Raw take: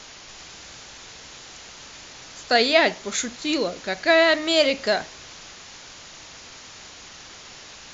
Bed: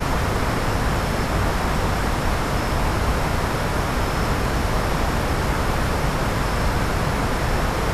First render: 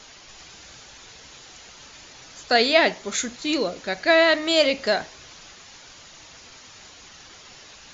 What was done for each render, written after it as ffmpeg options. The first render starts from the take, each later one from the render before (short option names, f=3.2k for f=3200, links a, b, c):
-af "afftdn=nr=6:nf=-44"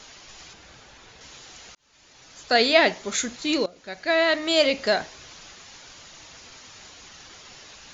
-filter_complex "[0:a]asettb=1/sr,asplit=3[a][b][c];[a]atrim=end=0.534[d];[b]atrim=start=0.53:end=1.21,asetpts=PTS-STARTPTS,afade=t=in:d=0.004:c=qsin,afade=t=out:st=0.676:d=0.004:c=qsin,highshelf=f=3.8k:g=-10.5[e];[c]atrim=start=1.206[f];[d][e]acrossfade=d=0.004:c1=hsin:c2=qsin[g];[g][f]acrossfade=d=0.004:c1=qsin:c2=hsin,asplit=3[h][i][j];[h]atrim=end=1.75,asetpts=PTS-STARTPTS,afade=t=out:st=1.746:d=0.004:c=hsin[k];[i]atrim=start=1.75:end=3.66,asetpts=PTS-STARTPTS,afade=t=in:d=0.9,afade=t=out:st=1.906:d=0.004:c=hsin:silence=0.11885[l];[j]atrim=start=3.66,asetpts=PTS-STARTPTS,afade=t=in:d=1.36:c=qsin:silence=0.11885[m];[k][l][m]concat=n=3:v=0:a=1"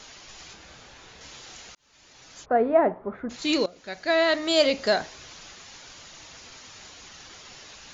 -filter_complex "[0:a]asettb=1/sr,asplit=3[a][b][c];[a]atrim=end=0.464[d];[b]atrim=start=0.46:end=1.62,asetpts=PTS-STARTPTS,afade=t=in:d=0.004:c=qsin,afade=t=out:st=1.156:d=0.004:c=qsin,asplit=2[e][f];[f]adelay=28,volume=-7dB[g];[e][g]amix=inputs=2:normalize=0,atrim=end_sample=51156[h];[c]atrim=start=1.616[i];[d][h]acrossfade=d=0.004:c1=hsin:c2=qsin[j];[j][i]acrossfade=d=0.004:c1=qsin:c2=hsin,asplit=3[k][l][m];[k]afade=t=out:st=2.44:d=0.02[n];[l]lowpass=f=1.2k:w=0.5412,lowpass=f=1.2k:w=1.3066,afade=t=in:st=2.44:d=0.02,afade=t=out:st=3.29:d=0.02[o];[m]afade=t=in:st=3.29:d=0.02[p];[n][o][p]amix=inputs=3:normalize=0,asettb=1/sr,asplit=3[q][r][s];[q]atrim=end=3.984[t];[r]atrim=start=3.98:end=5.04,asetpts=PTS-STARTPTS,afade=t=in:d=0.004:c=qsin,afade=t=out:st=1.056:d=0.004:c=qsin,equalizer=f=2.4k:w=1.5:g=-4[u];[s]atrim=start=5.036[v];[t][u]acrossfade=d=0.004:c1=hsin:c2=qsin[w];[w][v]acrossfade=d=0.004:c1=qsin:c2=hsin"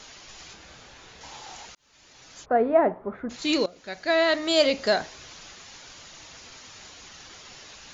-filter_complex "[0:a]asettb=1/sr,asplit=3[a][b][c];[a]atrim=end=1.234[d];[b]atrim=start=1.23:end=1.66,asetpts=PTS-STARTPTS,afade=t=in:d=0.004:c=qsin,afade=t=out:st=0.426:d=0.004:c=qsin,equalizer=f=840:w=2.6:g=13.5[e];[c]atrim=start=1.656[f];[d][e]acrossfade=d=0.004:c1=hsin:c2=qsin[g];[g][f]acrossfade=d=0.004:c1=qsin:c2=hsin"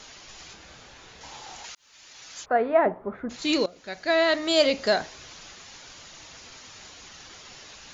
-filter_complex "[0:a]asettb=1/sr,asplit=3[a][b][c];[a]atrim=end=1.644[d];[b]atrim=start=1.64:end=2.86,asetpts=PTS-STARTPTS,afade=t=in:d=0.004:c=qsin,afade=t=out:st=1.216:d=0.004:c=qsin,tiltshelf=f=750:g=-6[e];[c]atrim=start=2.856[f];[d][e]acrossfade=d=0.004:c1=hsin:c2=qsin[g];[g][f]acrossfade=d=0.004:c1=qsin:c2=hsin"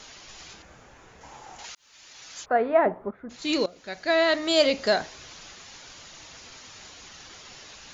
-filter_complex "[0:a]asettb=1/sr,asplit=3[a][b][c];[a]atrim=end=0.624[d];[b]atrim=start=0.62:end=1.59,asetpts=PTS-STARTPTS,afade=t=in:d=0.004:c=qsin,afade=t=out:st=0.966:d=0.004:c=qsin,equalizer=f=4.1k:w=0.91:g=-12.5[e];[c]atrim=start=1.586[f];[d][e]acrossfade=d=0.004:c1=hsin:c2=qsin[g];[g][f]acrossfade=d=0.004:c1=qsin:c2=hsin,asplit=2[h][i];[h]atrim=end=3.11,asetpts=PTS-STARTPTS,afade=t=out:st=3.106:d=0.004:c=hsin:silence=0.237137[j];[i]atrim=start=3.11,asetpts=PTS-STARTPTS,afade=t=in:d=0.55:silence=0.237137[k];[j][k]concat=n=2:v=0:a=1"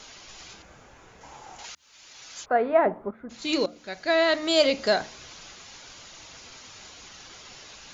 -af "bandreject=f=1.8k:w=23,bandreject=f=74.74:t=h:w=4,bandreject=f=149.48:t=h:w=4,bandreject=f=224.22:t=h:w=4,bandreject=f=298.96:t=h:w=4"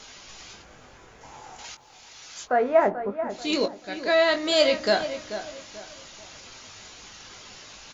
-filter_complex "[0:a]asplit=2[a][b];[b]adelay=20,volume=-7.5dB[c];[a][c]amix=inputs=2:normalize=0,asplit=2[d][e];[e]adelay=437,lowpass=f=2.3k:p=1,volume=-10.5dB,asplit=2[f][g];[g]adelay=437,lowpass=f=2.3k:p=1,volume=0.34,asplit=2[h][i];[i]adelay=437,lowpass=f=2.3k:p=1,volume=0.34,asplit=2[j][k];[k]adelay=437,lowpass=f=2.3k:p=1,volume=0.34[l];[d][f][h][j][l]amix=inputs=5:normalize=0"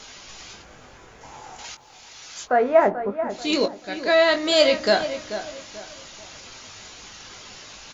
-af "volume=3dB"